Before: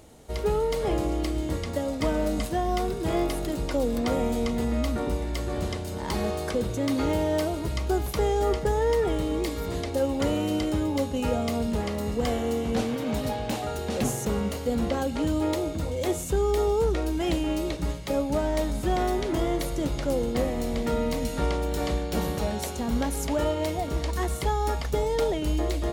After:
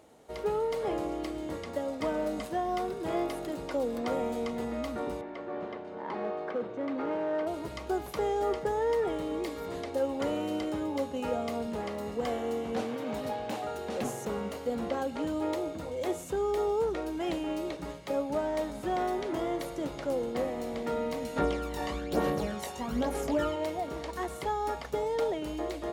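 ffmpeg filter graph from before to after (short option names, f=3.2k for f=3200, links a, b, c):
-filter_complex "[0:a]asettb=1/sr,asplit=3[a][b][c];[a]atrim=end=5.214[d];[b]atrim=start=5.21:end=7.47,asetpts=PTS-STARTPTS,afade=t=in:d=0.004:c=qsin,afade=t=out:st=2.256:d=0.004:c=qsin,highpass=190,lowpass=2.1k,asoftclip=type=hard:threshold=-22.5dB[e];[c]atrim=start=7.466[f];[d][e]acrossfade=d=0.004:c1=hsin:c2=qsin[g];[g][f]acrossfade=d=0.004:c1=qsin:c2=hsin,asettb=1/sr,asplit=3[h][i][j];[h]atrim=end=21.364[k];[i]atrim=start=21.36:end=23.56,asetpts=PTS-STARTPTS,afade=t=in:d=0.004:c=qsin,afade=t=out:st=2.196:d=0.004:c=qsin,asplit=2[l][m];[m]adelay=20,volume=-5.5dB[n];[l][n]amix=inputs=2:normalize=0,atrim=end_sample=97020,aphaser=in_gain=1:out_gain=1:delay=1.1:decay=0.54:speed=1.1:type=sinusoidal[o];[j]atrim=start=23.556[p];[k][o]acrossfade=d=0.004:c1=hsin:c2=qsin[q];[q][p]acrossfade=d=0.004:c1=qsin:c2=hsin,highpass=f=530:p=1,highshelf=f=2.2k:g=-11"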